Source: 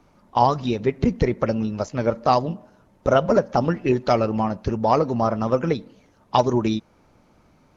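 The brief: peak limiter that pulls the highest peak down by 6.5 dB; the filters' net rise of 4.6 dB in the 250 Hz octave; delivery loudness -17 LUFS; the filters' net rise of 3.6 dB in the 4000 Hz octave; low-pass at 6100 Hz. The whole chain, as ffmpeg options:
-af "lowpass=6.1k,equalizer=f=250:t=o:g=5.5,equalizer=f=4k:t=o:g=5.5,volume=5dB,alimiter=limit=-4.5dB:level=0:latency=1"

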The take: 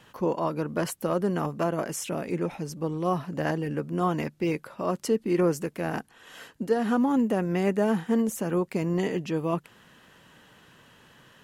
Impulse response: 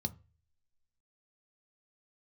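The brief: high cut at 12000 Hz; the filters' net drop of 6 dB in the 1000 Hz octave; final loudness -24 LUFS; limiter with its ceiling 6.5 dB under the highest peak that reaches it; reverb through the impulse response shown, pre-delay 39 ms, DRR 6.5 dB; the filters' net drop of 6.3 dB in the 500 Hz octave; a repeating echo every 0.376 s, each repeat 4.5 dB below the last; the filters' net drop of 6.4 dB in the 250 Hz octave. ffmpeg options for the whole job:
-filter_complex "[0:a]lowpass=12k,equalizer=f=250:t=o:g=-7.5,equalizer=f=500:t=o:g=-4,equalizer=f=1k:t=o:g=-6,alimiter=limit=-24dB:level=0:latency=1,aecho=1:1:376|752|1128|1504|1880|2256|2632|3008|3384:0.596|0.357|0.214|0.129|0.0772|0.0463|0.0278|0.0167|0.01,asplit=2[a][b];[1:a]atrim=start_sample=2205,adelay=39[c];[b][c]afir=irnorm=-1:irlink=0,volume=-6.5dB[d];[a][d]amix=inputs=2:normalize=0,volume=5dB"

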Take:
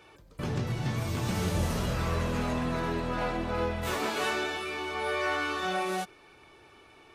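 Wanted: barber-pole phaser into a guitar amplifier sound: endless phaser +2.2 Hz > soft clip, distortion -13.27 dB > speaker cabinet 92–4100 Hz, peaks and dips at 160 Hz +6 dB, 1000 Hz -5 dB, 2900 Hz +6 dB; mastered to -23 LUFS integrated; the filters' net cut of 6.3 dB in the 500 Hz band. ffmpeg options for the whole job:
-filter_complex "[0:a]equalizer=f=500:t=o:g=-8,asplit=2[a][b];[b]afreqshift=2.2[c];[a][c]amix=inputs=2:normalize=1,asoftclip=threshold=-32dB,highpass=92,equalizer=f=160:t=q:w=4:g=6,equalizer=f=1k:t=q:w=4:g=-5,equalizer=f=2.9k:t=q:w=4:g=6,lowpass=f=4.1k:w=0.5412,lowpass=f=4.1k:w=1.3066,volume=15dB"

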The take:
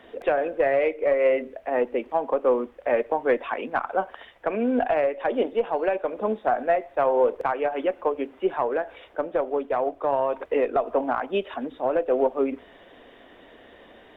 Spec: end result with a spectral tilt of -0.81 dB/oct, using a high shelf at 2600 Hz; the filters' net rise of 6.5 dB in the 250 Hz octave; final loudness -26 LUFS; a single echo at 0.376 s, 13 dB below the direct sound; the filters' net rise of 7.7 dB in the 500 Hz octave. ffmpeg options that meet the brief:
-af "equalizer=f=250:t=o:g=5,equalizer=f=500:t=o:g=8,highshelf=f=2.6k:g=-5,aecho=1:1:376:0.224,volume=-8dB"

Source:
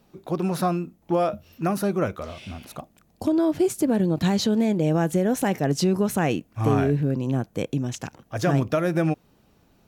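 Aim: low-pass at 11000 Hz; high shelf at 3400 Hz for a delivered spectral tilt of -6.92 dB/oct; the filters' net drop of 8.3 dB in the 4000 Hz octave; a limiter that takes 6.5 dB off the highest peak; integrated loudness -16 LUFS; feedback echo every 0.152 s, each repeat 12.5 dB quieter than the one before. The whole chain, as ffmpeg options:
-af "lowpass=11k,highshelf=f=3.4k:g=-7.5,equalizer=f=4k:t=o:g=-5,alimiter=limit=-16dB:level=0:latency=1,aecho=1:1:152|304|456:0.237|0.0569|0.0137,volume=10dB"

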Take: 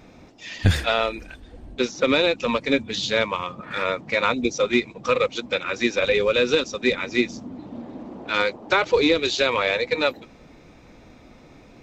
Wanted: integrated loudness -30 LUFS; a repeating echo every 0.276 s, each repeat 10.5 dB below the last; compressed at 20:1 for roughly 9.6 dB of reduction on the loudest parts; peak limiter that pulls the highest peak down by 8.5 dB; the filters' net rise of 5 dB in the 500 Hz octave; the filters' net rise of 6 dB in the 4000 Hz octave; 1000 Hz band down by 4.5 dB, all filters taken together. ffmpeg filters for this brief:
-af "equalizer=f=500:t=o:g=7.5,equalizer=f=1k:t=o:g=-9,equalizer=f=4k:t=o:g=7,acompressor=threshold=-18dB:ratio=20,alimiter=limit=-16.5dB:level=0:latency=1,aecho=1:1:276|552|828:0.299|0.0896|0.0269,volume=-2.5dB"

